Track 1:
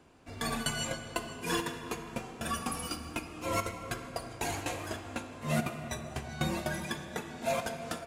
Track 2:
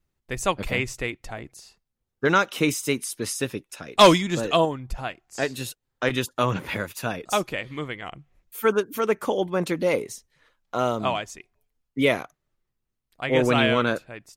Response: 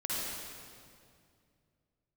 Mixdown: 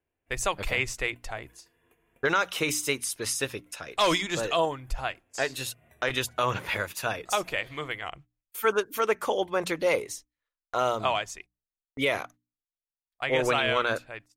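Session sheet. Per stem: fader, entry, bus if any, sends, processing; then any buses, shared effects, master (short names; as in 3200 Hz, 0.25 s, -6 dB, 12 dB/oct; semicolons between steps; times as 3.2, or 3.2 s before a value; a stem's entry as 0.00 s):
5.37 s -17.5 dB -> 6.1 s -9.5 dB, 0.00 s, no send, band shelf 2400 Hz +14.5 dB 1.3 oct; compressor, threshold -32 dBFS, peak gain reduction 12 dB; EQ curve 410 Hz 0 dB, 4700 Hz -25 dB, 14000 Hz +5 dB
+1.5 dB, 0.00 s, no send, high shelf 11000 Hz -3 dB; gate -45 dBFS, range -28 dB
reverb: off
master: bell 210 Hz -12 dB 1.7 oct; notches 60/120/180/240/300 Hz; limiter -13.5 dBFS, peak gain reduction 11.5 dB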